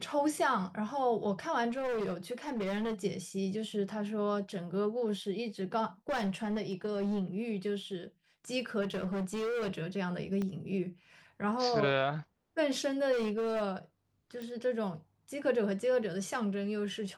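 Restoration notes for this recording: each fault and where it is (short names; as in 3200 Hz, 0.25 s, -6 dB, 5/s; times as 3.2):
1.69–2.94 clipped -31 dBFS
6.09–7.23 clipped -29 dBFS
8.81–9.73 clipped -31.5 dBFS
10.42 pop -24 dBFS
13.12–13.63 clipped -29 dBFS
14.42 pop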